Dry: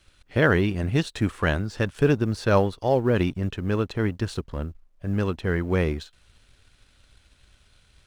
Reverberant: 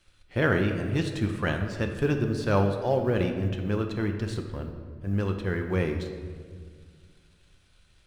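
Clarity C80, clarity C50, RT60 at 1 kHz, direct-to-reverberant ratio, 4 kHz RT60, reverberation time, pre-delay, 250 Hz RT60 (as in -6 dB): 8.5 dB, 6.5 dB, 1.7 s, 4.0 dB, 1.1 s, 1.9 s, 5 ms, 2.4 s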